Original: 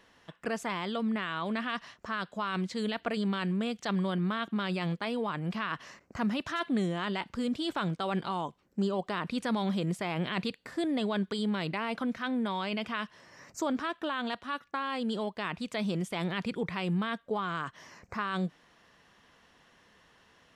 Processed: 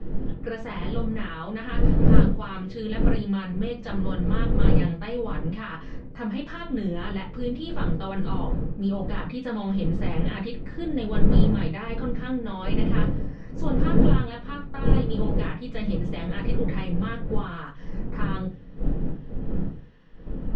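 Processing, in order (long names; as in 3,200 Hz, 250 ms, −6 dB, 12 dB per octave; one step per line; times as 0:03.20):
wind on the microphone 210 Hz −29 dBFS
high-frequency loss of the air 200 metres
convolution reverb RT60 0.30 s, pre-delay 4 ms, DRR −7 dB
level −8 dB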